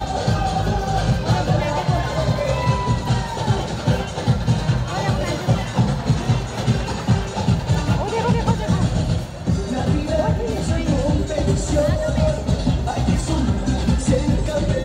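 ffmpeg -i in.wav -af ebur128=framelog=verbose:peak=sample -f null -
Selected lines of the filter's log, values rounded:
Integrated loudness:
  I:         -20.6 LUFS
  Threshold: -30.6 LUFS
Loudness range:
  LRA:         0.8 LU
  Threshold: -40.7 LUFS
  LRA low:   -21.0 LUFS
  LRA high:  -20.3 LUFS
Sample peak:
  Peak:       -9.0 dBFS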